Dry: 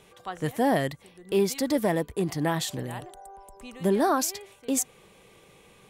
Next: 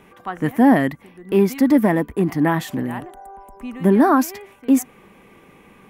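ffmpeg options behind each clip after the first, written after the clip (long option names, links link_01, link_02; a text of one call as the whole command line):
ffmpeg -i in.wav -af "equalizer=frequency=125:width_type=o:width=1:gain=-4,equalizer=frequency=250:width_type=o:width=1:gain=10,equalizer=frequency=500:width_type=o:width=1:gain=-5,equalizer=frequency=1000:width_type=o:width=1:gain=3,equalizer=frequency=2000:width_type=o:width=1:gain=4,equalizer=frequency=4000:width_type=o:width=1:gain=-10,equalizer=frequency=8000:width_type=o:width=1:gain=-10,volume=6dB" out.wav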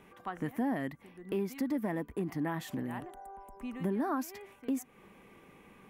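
ffmpeg -i in.wav -af "acompressor=threshold=-26dB:ratio=2.5,volume=-8.5dB" out.wav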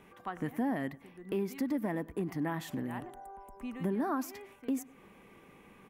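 ffmpeg -i in.wav -filter_complex "[0:a]asplit=2[link_01][link_02];[link_02]adelay=99,lowpass=frequency=2200:poles=1,volume=-20.5dB,asplit=2[link_03][link_04];[link_04]adelay=99,lowpass=frequency=2200:poles=1,volume=0.36,asplit=2[link_05][link_06];[link_06]adelay=99,lowpass=frequency=2200:poles=1,volume=0.36[link_07];[link_01][link_03][link_05][link_07]amix=inputs=4:normalize=0" out.wav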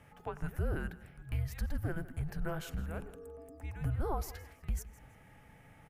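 ffmpeg -i in.wav -af "aecho=1:1:163|326|489:0.126|0.0378|0.0113,afreqshift=-320,volume=-1dB" out.wav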